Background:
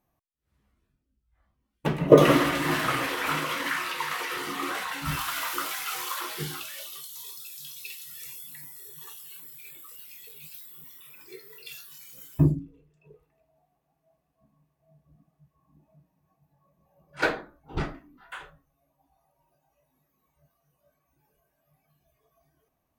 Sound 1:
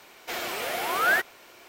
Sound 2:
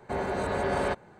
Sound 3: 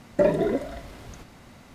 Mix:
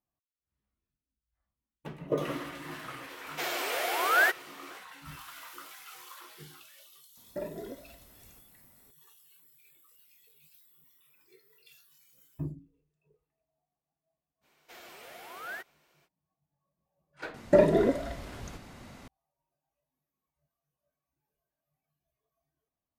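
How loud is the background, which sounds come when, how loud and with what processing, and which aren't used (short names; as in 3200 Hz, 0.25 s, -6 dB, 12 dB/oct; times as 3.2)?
background -16 dB
3.1 add 1 -1 dB + steep high-pass 300 Hz
7.17 add 3 -17.5 dB
14.41 add 1 -18 dB, fades 0.05 s
17.34 add 3
not used: 2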